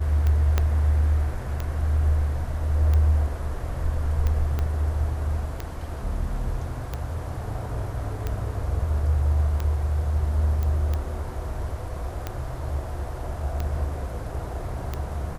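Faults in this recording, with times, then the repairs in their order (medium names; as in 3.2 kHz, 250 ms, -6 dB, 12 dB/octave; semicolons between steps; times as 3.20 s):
tick 45 rpm -15 dBFS
0.58 s: pop -9 dBFS
4.59 s: pop -15 dBFS
10.63 s: pop -17 dBFS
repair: de-click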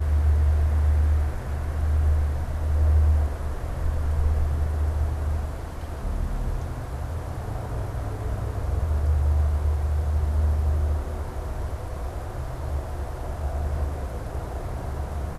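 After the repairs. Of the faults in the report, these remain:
0.58 s: pop
4.59 s: pop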